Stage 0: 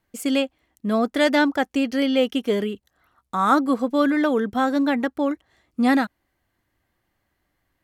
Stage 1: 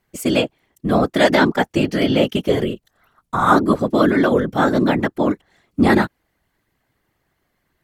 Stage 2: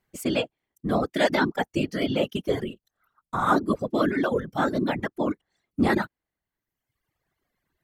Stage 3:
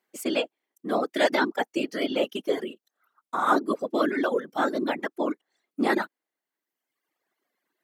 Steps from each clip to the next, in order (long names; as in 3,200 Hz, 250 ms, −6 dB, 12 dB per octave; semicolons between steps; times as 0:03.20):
random phases in short frames; level +4 dB
reverb reduction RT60 1.1 s; level −7 dB
high-pass filter 260 Hz 24 dB per octave